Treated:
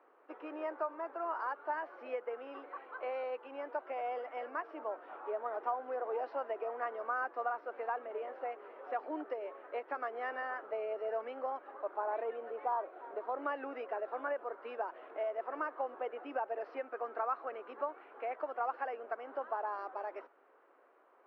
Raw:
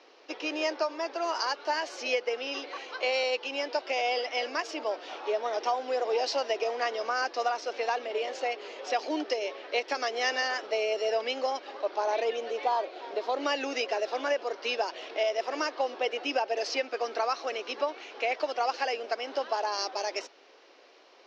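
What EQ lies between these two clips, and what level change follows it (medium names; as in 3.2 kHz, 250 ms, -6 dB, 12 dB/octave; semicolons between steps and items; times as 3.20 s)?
four-pole ladder low-pass 1.6 kHz, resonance 45%; -1.0 dB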